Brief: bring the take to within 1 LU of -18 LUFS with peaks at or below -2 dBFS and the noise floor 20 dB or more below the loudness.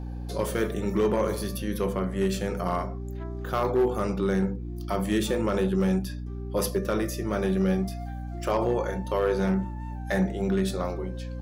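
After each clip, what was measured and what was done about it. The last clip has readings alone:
clipped 0.5%; flat tops at -17.0 dBFS; hum 60 Hz; harmonics up to 300 Hz; hum level -32 dBFS; loudness -28.0 LUFS; peak -17.0 dBFS; loudness target -18.0 LUFS
-> clip repair -17 dBFS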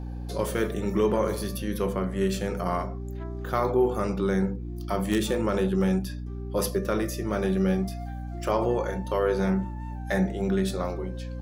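clipped 0.0%; hum 60 Hz; harmonics up to 300 Hz; hum level -32 dBFS
-> de-hum 60 Hz, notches 5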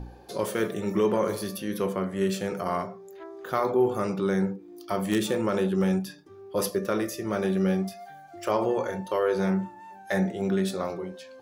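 hum none; loudness -27.5 LUFS; peak -9.5 dBFS; loudness target -18.0 LUFS
-> gain +9.5 dB; limiter -2 dBFS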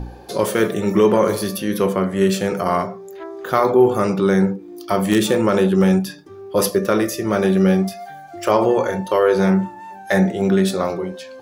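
loudness -18.0 LUFS; peak -2.0 dBFS; noise floor -38 dBFS

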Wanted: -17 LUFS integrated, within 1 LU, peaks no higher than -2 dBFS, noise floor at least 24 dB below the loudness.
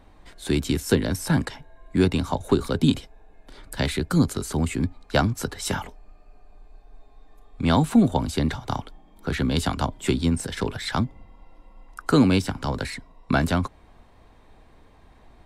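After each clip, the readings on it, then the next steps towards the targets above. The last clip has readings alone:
loudness -24.5 LUFS; peak -7.0 dBFS; loudness target -17.0 LUFS
-> gain +7.5 dB; limiter -2 dBFS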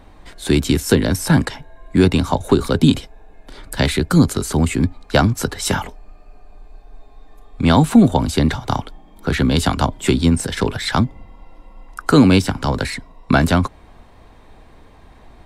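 loudness -17.5 LUFS; peak -2.0 dBFS; noise floor -46 dBFS

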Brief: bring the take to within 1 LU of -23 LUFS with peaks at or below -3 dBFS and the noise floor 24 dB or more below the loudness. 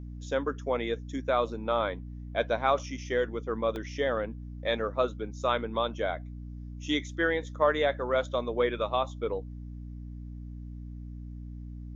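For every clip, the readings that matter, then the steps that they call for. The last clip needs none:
dropouts 1; longest dropout 1.2 ms; hum 60 Hz; harmonics up to 300 Hz; hum level -38 dBFS; loudness -30.5 LUFS; peak -12.5 dBFS; loudness target -23.0 LUFS
-> interpolate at 3.76, 1.2 ms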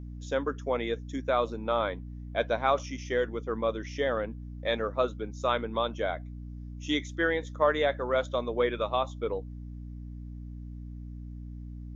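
dropouts 0; hum 60 Hz; harmonics up to 300 Hz; hum level -38 dBFS
-> de-hum 60 Hz, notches 5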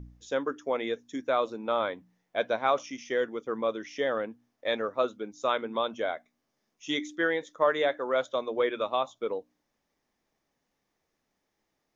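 hum none; loudness -30.5 LUFS; peak -13.0 dBFS; loudness target -23.0 LUFS
-> gain +7.5 dB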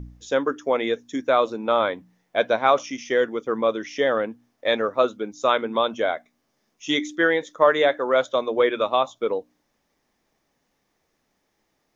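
loudness -23.0 LUFS; peak -5.5 dBFS; noise floor -73 dBFS

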